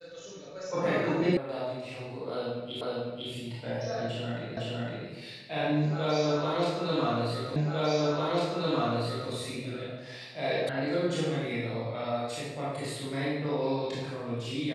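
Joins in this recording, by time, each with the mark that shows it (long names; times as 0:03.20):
0:01.37: cut off before it has died away
0:02.81: the same again, the last 0.5 s
0:04.57: the same again, the last 0.51 s
0:07.56: the same again, the last 1.75 s
0:10.69: cut off before it has died away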